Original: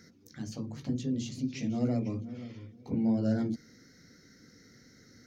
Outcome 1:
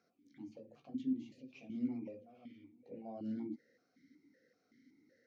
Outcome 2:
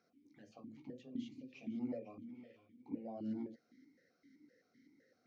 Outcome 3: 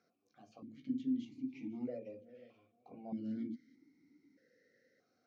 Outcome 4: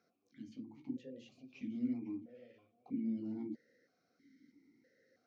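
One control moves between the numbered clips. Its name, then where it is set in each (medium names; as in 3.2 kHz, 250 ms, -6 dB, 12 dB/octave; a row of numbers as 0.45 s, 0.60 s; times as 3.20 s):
stepped vowel filter, rate: 5.3 Hz, 7.8 Hz, 1.6 Hz, 3.1 Hz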